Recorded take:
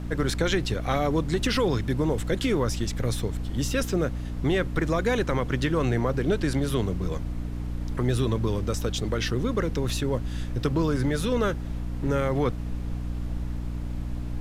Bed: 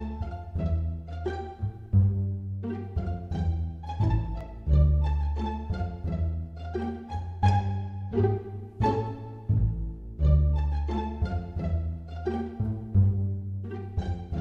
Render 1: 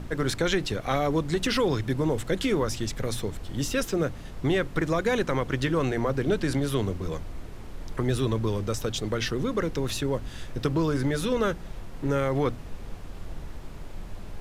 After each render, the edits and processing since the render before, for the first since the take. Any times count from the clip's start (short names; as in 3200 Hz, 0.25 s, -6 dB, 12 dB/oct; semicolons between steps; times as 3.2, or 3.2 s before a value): notches 60/120/180/240/300 Hz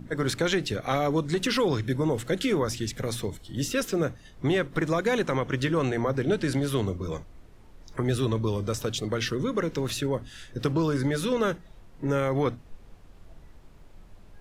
noise print and reduce 12 dB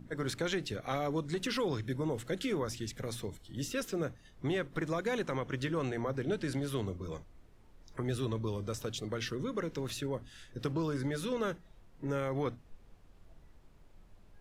gain -8.5 dB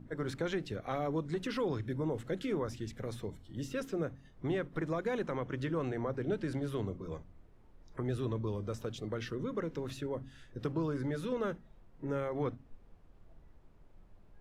high shelf 2500 Hz -11 dB; de-hum 45.16 Hz, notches 6